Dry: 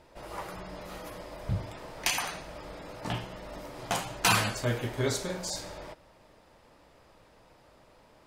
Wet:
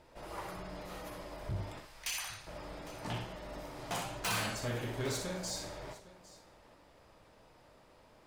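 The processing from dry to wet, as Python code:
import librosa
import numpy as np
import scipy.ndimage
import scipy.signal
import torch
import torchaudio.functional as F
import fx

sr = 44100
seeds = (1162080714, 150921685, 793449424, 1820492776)

y = fx.tone_stack(x, sr, knobs='10-0-10', at=(1.8, 2.47))
y = 10.0 ** (-28.0 / 20.0) * np.tanh(y / 10.0 ** (-28.0 / 20.0))
y = fx.echo_multitap(y, sr, ms=(61, 806), db=(-7.0, -18.5))
y = y * librosa.db_to_amplitude(-3.5)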